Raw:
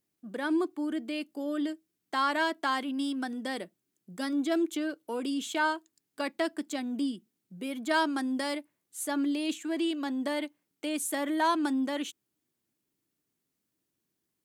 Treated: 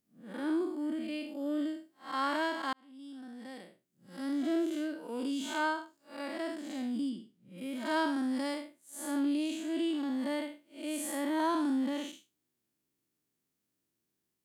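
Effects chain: time blur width 0.169 s; 2.73–4.58 fade in; 7.09–7.58 high shelf 6400 Hz -8 dB

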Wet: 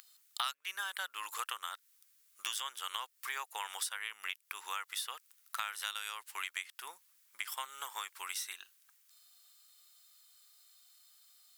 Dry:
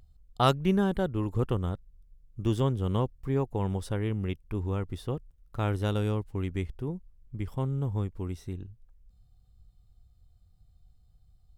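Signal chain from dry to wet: HPF 1300 Hz 24 dB/oct; high shelf 6200 Hz +10.5 dB; compressor 6:1, threshold -52 dBFS, peak gain reduction 26 dB; gain +16 dB

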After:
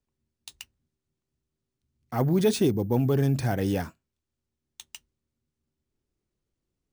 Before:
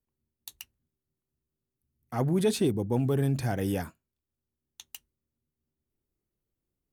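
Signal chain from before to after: LPF 9800 Hz 24 dB/oct; careless resampling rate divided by 3×, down none, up hold; gain +3 dB

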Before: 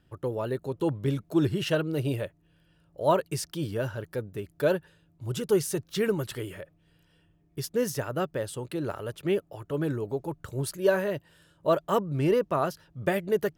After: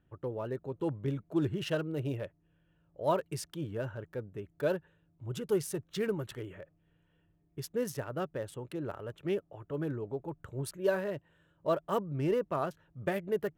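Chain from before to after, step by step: Wiener smoothing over 9 samples; gain -6 dB

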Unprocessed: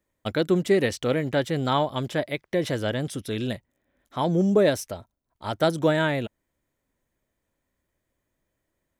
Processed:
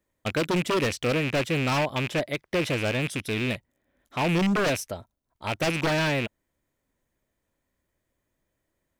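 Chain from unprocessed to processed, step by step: rattling part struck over -34 dBFS, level -19 dBFS; wavefolder -18.5 dBFS

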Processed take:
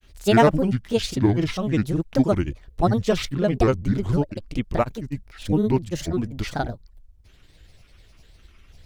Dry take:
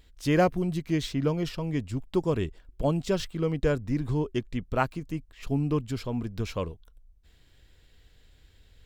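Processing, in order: grains, spray 35 ms, pitch spread up and down by 7 st; gain +7.5 dB

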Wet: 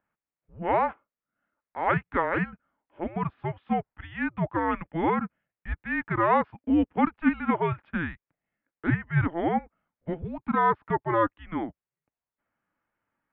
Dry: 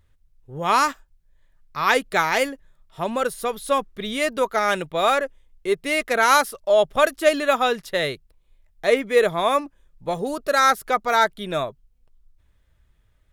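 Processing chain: mistuned SSB -340 Hz 440–2600 Hz; gain -5 dB

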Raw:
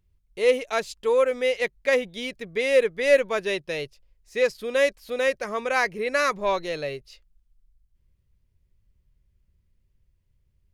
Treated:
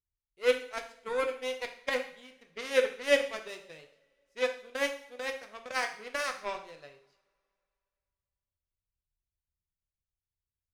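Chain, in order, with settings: added harmonics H 3 -13 dB, 5 -42 dB, 7 -27 dB, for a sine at -6.5 dBFS; two-slope reverb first 0.55 s, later 2.6 s, from -28 dB, DRR 4 dB; gain -3 dB

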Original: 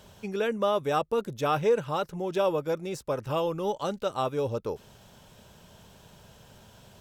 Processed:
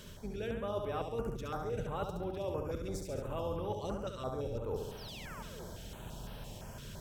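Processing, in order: octaver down 2 oct, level -1 dB; reverse; compressor 8:1, threshold -40 dBFS, peak gain reduction 21 dB; reverse; painted sound fall, 4.97–5.64, 330–6100 Hz -54 dBFS; flutter echo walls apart 11.9 m, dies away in 0.9 s; stepped notch 5.9 Hz 780–7000 Hz; gain +4 dB

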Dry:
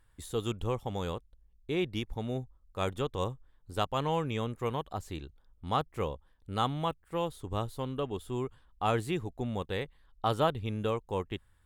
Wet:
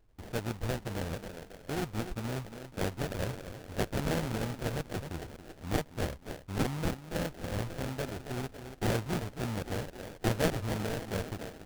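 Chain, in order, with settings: dynamic EQ 380 Hz, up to -6 dB, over -47 dBFS, Q 1.5; thinning echo 0.276 s, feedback 58%, high-pass 240 Hz, level -7 dB; sample-rate reducer 1100 Hz, jitter 20%

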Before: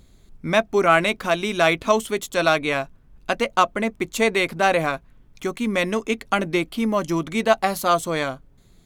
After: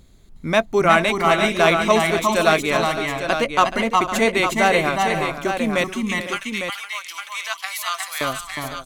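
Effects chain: 5.84–8.21 Bessel high-pass 1800 Hz, order 4; tapped delay 0.361/0.362/0.427/0.506/0.855 s -5/-5.5/-13/-12.5/-7.5 dB; gain +1 dB

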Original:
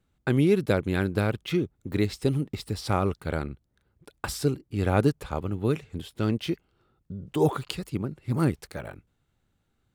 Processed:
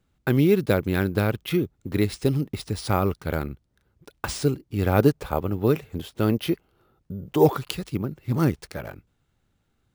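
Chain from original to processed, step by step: 4.99–7.47 bell 640 Hz +4.5 dB 1.9 oct; careless resampling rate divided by 3×, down none, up hold; gain +2.5 dB

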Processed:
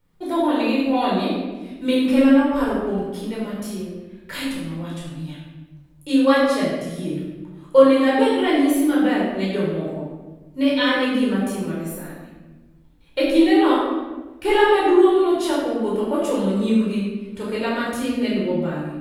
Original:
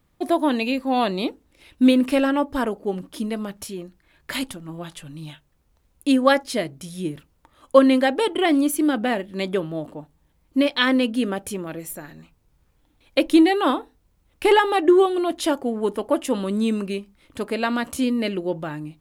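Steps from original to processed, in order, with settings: shoebox room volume 790 m³, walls mixed, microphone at 4.6 m; gain -9 dB

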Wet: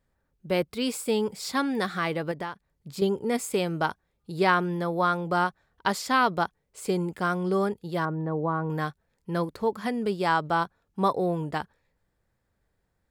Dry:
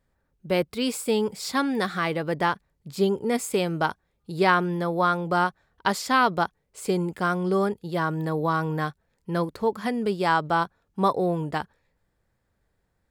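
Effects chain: 2.31–3.02 compressor 6:1, threshold -29 dBFS, peak gain reduction 10.5 dB; 8.05–8.7 LPF 1200 Hz 12 dB/oct; gain -2 dB

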